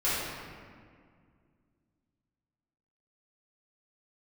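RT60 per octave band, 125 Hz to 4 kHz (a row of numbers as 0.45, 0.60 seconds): 2.9, 2.9, 2.1, 1.9, 1.7, 1.2 seconds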